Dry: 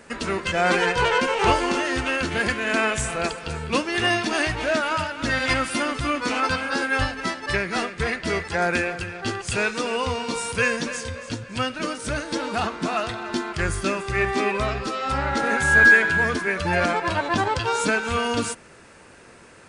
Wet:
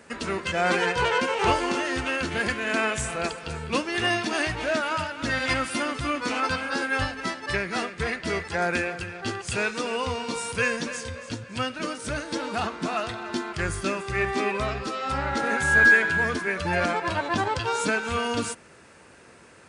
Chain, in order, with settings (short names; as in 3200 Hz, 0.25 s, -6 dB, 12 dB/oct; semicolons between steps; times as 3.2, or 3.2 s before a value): HPF 51 Hz; gain -3 dB